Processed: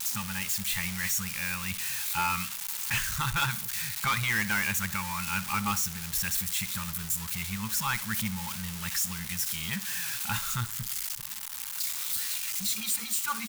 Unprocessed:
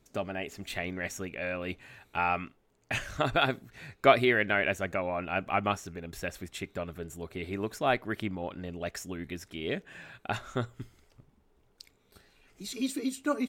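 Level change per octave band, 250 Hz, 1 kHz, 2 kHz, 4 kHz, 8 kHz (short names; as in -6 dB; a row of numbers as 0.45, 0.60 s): -3.0, -1.5, +1.5, +6.0, +17.0 dB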